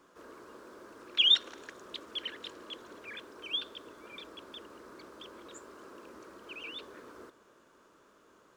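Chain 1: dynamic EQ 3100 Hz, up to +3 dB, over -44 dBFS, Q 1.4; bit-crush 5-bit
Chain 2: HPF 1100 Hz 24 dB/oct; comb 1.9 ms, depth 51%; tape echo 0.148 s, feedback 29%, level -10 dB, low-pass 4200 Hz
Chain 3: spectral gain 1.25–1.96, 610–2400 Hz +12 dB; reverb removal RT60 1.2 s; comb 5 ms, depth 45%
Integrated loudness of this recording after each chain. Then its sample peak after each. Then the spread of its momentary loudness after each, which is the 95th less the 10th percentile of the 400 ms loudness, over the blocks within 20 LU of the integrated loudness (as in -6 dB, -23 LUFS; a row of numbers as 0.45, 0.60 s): -25.0, -28.5, -29.0 LUFS; -11.5, -11.0, -11.5 dBFS; 15, 25, 25 LU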